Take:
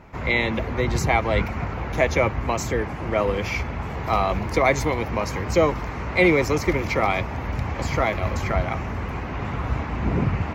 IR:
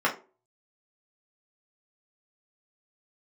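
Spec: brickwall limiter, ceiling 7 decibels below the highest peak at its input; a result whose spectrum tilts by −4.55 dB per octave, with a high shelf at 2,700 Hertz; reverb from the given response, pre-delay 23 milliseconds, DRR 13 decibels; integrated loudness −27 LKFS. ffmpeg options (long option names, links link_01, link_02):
-filter_complex "[0:a]highshelf=frequency=2700:gain=8.5,alimiter=limit=-11dB:level=0:latency=1,asplit=2[link_01][link_02];[1:a]atrim=start_sample=2205,adelay=23[link_03];[link_02][link_03]afir=irnorm=-1:irlink=0,volume=-27dB[link_04];[link_01][link_04]amix=inputs=2:normalize=0,volume=-3.5dB"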